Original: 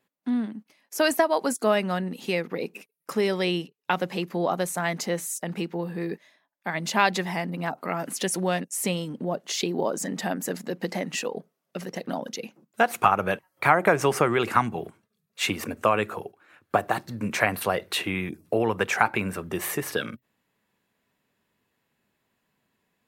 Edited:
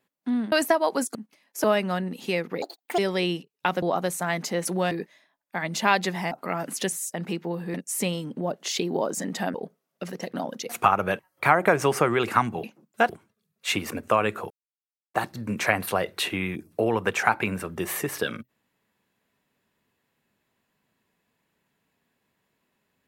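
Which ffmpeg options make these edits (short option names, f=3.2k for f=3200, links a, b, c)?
-filter_complex "[0:a]asplit=18[a][b][c][d][e][f][g][h][i][j][k][l][m][n][o][p][q][r];[a]atrim=end=0.522[s];[b]atrim=start=1.008:end=1.642[t];[c]atrim=start=0.518:end=1.012[u];[d]atrim=start=1.638:end=2.624[v];[e]atrim=start=2.62:end=3.23,asetpts=PTS-STARTPTS,asetrate=74088,aresample=44100,atrim=end_sample=16012,asetpts=PTS-STARTPTS[w];[f]atrim=start=3.226:end=4.072[x];[g]atrim=start=4.378:end=5.212[y];[h]atrim=start=8.318:end=8.582[z];[i]atrim=start=6.028:end=7.432[aa];[j]atrim=start=7.708:end=8.322[ab];[k]atrim=start=5.208:end=6.032[ac];[l]atrim=start=8.578:end=10.382[ad];[m]atrim=start=11.278:end=12.432[ae];[n]atrim=start=12.888:end=14.832[af];[o]atrim=start=12.428:end=12.892[ag];[p]atrim=start=14.828:end=16.24,asetpts=PTS-STARTPTS,afade=t=out:st=1.408:d=0.004:c=hsin[ah];[q]atrim=start=16.24:end=16.88,asetpts=PTS-STARTPTS,volume=0[ai];[r]atrim=start=16.88,asetpts=PTS-STARTPTS,afade=t=in:d=0.004:c=hsin[aj];[s][t]acrossfade=d=0.004:c1=hsin:c2=hsin[ak];[ak][u]acrossfade=d=0.004:c1=hsin:c2=hsin[al];[al][v]acrossfade=d=0.004:c1=hsin:c2=hsin[am];[am][w]acrossfade=d=0.004:c1=hsin:c2=hsin[an];[an][x]acrossfade=d=0.004:c1=hsin:c2=hsin[ao];[ao][y]acrossfade=d=0.004:c1=hsin:c2=hsin[ap];[ap][z]acrossfade=d=0.004:c1=hsin:c2=hsin[aq];[aq][aa]acrossfade=d=0.004:c1=hsin:c2=hsin[ar];[ar][ab]acrossfade=d=0.004:c1=hsin:c2=hsin[as];[as][ac]acrossfade=d=0.004:c1=hsin:c2=hsin[at];[at][ad]acrossfade=d=0.004:c1=hsin:c2=hsin[au];[au][ae]acrossfade=d=0.004:c1=hsin:c2=hsin[av];[av][af]acrossfade=d=0.004:c1=hsin:c2=hsin[aw];[aw][ag]acrossfade=d=0.004:c1=hsin:c2=hsin[ax];[ah][ai][aj]concat=n=3:v=0:a=1[ay];[ax][ay]acrossfade=d=0.004:c1=hsin:c2=hsin"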